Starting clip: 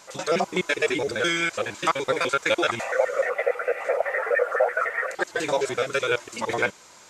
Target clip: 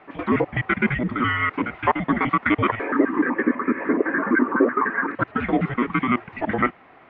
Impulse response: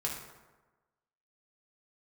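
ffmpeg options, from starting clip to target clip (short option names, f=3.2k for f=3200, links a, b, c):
-af "highpass=f=360:t=q:w=0.5412,highpass=f=360:t=q:w=1.307,lowpass=f=2.7k:t=q:w=0.5176,lowpass=f=2.7k:t=q:w=0.7071,lowpass=f=2.7k:t=q:w=1.932,afreqshift=-240,volume=3.5dB"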